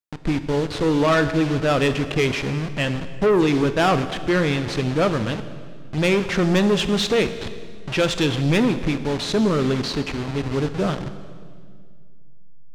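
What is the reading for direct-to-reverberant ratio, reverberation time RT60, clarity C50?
10.0 dB, 2.0 s, 11.5 dB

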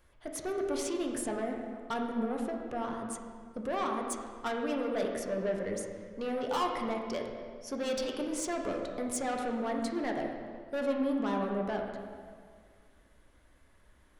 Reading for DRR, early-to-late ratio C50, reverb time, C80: 0.5 dB, 3.5 dB, 1.9 s, 4.5 dB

